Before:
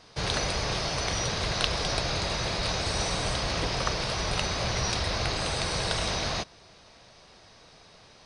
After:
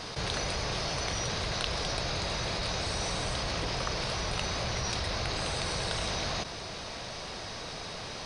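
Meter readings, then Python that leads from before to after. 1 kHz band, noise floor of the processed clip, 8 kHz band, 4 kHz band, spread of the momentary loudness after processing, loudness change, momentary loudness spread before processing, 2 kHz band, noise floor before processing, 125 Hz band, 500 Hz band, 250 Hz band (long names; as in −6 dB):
−3.0 dB, −40 dBFS, −3.0 dB, −3.0 dB, 7 LU, −4.0 dB, 2 LU, −3.0 dB, −54 dBFS, −3.5 dB, −3.0 dB, −3.0 dB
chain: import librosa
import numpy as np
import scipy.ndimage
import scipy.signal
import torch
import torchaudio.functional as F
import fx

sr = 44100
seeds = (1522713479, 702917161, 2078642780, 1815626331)

y = fx.env_flatten(x, sr, amount_pct=70)
y = y * librosa.db_to_amplitude(-7.0)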